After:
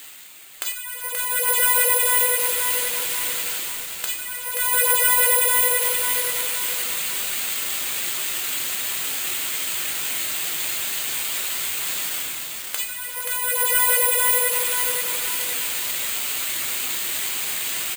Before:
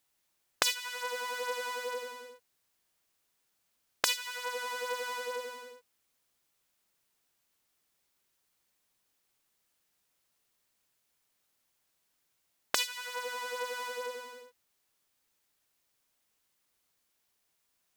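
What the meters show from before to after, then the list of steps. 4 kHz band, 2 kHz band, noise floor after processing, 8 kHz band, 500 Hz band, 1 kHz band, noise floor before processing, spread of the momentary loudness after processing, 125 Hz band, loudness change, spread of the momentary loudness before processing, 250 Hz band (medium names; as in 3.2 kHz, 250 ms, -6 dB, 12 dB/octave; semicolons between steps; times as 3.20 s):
+13.0 dB, +14.5 dB, -33 dBFS, +22.0 dB, +10.5 dB, +11.5 dB, -78 dBFS, 11 LU, no reading, +14.5 dB, 15 LU, +14.5 dB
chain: jump at every zero crossing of -31.5 dBFS; reverb removal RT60 0.57 s; frequency weighting D; level rider gain up to 14 dB; overload inside the chain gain 4.5 dB; distance through air 180 m; delay 100 ms -15 dB; simulated room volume 52 m³, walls mixed, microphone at 0.43 m; careless resampling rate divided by 4×, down filtered, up zero stuff; bit-crushed delay 529 ms, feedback 55%, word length 4-bit, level -3.5 dB; trim -8 dB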